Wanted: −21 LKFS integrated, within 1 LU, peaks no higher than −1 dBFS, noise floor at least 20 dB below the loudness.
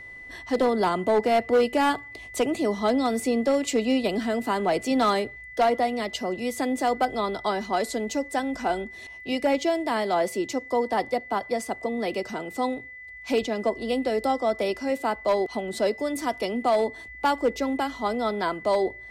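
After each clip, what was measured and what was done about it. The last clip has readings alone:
share of clipped samples 0.8%; peaks flattened at −15.5 dBFS; interfering tone 2,000 Hz; level of the tone −40 dBFS; integrated loudness −26.0 LKFS; sample peak −15.5 dBFS; target loudness −21.0 LKFS
→ clipped peaks rebuilt −15.5 dBFS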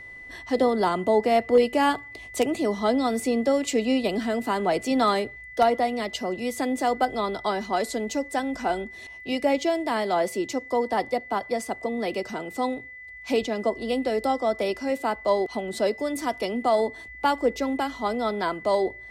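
share of clipped samples 0.0%; interfering tone 2,000 Hz; level of the tone −40 dBFS
→ notch filter 2,000 Hz, Q 30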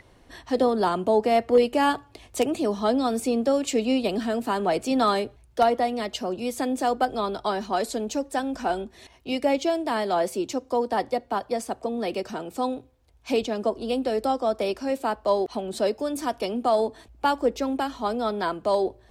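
interfering tone none found; integrated loudness −25.5 LKFS; sample peak −8.0 dBFS; target loudness −21.0 LKFS
→ level +4.5 dB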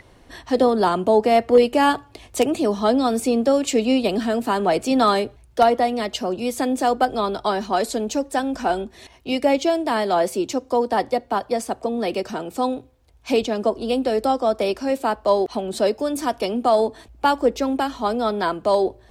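integrated loudness −21.0 LKFS; sample peak −3.5 dBFS; background noise floor −51 dBFS

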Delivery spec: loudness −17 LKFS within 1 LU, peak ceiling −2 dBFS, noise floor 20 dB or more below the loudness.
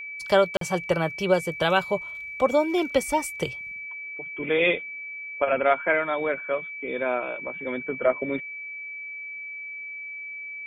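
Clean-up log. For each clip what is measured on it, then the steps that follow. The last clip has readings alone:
number of dropouts 1; longest dropout 43 ms; interfering tone 2,300 Hz; level of the tone −34 dBFS; integrated loudness −26.5 LKFS; sample peak −7.0 dBFS; target loudness −17.0 LKFS
→ repair the gap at 0:00.57, 43 ms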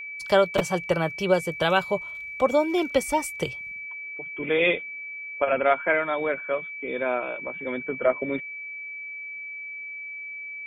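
number of dropouts 0; interfering tone 2,300 Hz; level of the tone −34 dBFS
→ notch filter 2,300 Hz, Q 30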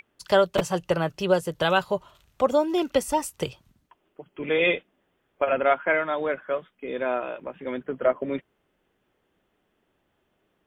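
interfering tone none found; integrated loudness −25.5 LKFS; sample peak −7.0 dBFS; target loudness −17.0 LKFS
→ level +8.5 dB
brickwall limiter −2 dBFS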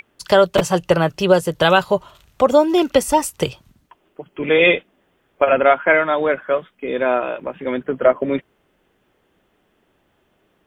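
integrated loudness −17.5 LKFS; sample peak −2.0 dBFS; background noise floor −64 dBFS

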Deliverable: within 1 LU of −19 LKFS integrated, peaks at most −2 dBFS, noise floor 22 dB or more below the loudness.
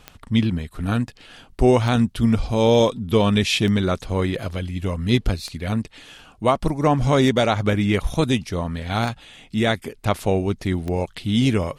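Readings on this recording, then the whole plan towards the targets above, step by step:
number of clicks 7; integrated loudness −21.5 LKFS; sample peak −5.0 dBFS; target loudness −19.0 LKFS
→ click removal
level +2.5 dB

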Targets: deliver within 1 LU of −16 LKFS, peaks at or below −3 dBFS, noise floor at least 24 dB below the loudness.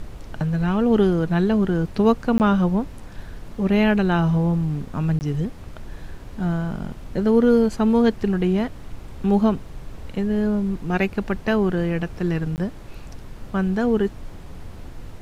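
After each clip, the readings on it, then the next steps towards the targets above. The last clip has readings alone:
number of dropouts 3; longest dropout 19 ms; background noise floor −39 dBFS; target noise floor −46 dBFS; integrated loudness −21.5 LKFS; sample peak −6.5 dBFS; target loudness −16.0 LKFS
→ repair the gap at 0:02.38/0:05.19/0:12.56, 19 ms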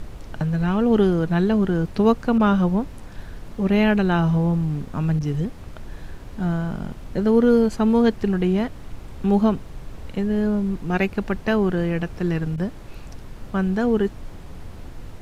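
number of dropouts 0; background noise floor −39 dBFS; target noise floor −46 dBFS
→ noise reduction from a noise print 7 dB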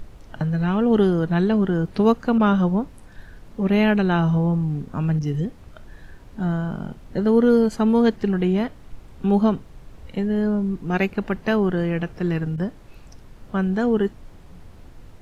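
background noise floor −45 dBFS; target noise floor −46 dBFS
→ noise reduction from a noise print 6 dB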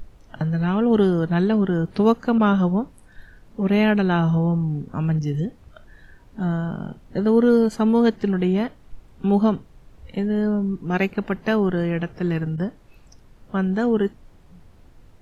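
background noise floor −50 dBFS; integrated loudness −21.5 LKFS; sample peak −6.5 dBFS; target loudness −16.0 LKFS
→ level +5.5 dB
brickwall limiter −3 dBFS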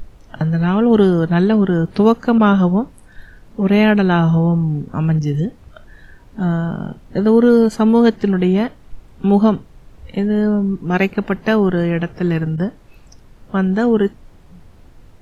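integrated loudness −16.0 LKFS; sample peak −3.0 dBFS; background noise floor −45 dBFS

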